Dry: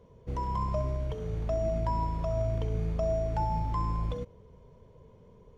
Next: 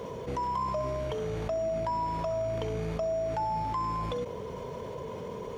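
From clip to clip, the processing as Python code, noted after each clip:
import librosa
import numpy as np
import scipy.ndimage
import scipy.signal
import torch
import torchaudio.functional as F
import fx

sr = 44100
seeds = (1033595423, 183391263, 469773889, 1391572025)

y = fx.highpass(x, sr, hz=440.0, slope=6)
y = fx.env_flatten(y, sr, amount_pct=70)
y = y * librosa.db_to_amplitude(1.0)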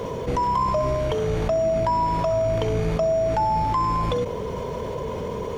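y = fx.octave_divider(x, sr, octaves=2, level_db=-5.0)
y = y * librosa.db_to_amplitude(9.0)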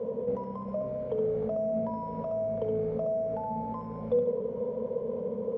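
y = fx.double_bandpass(x, sr, hz=330.0, octaves=1.1)
y = y + 10.0 ** (-5.5 / 20.0) * np.pad(y, (int(71 * sr / 1000.0), 0))[:len(y)]
y = y * librosa.db_to_amplitude(1.0)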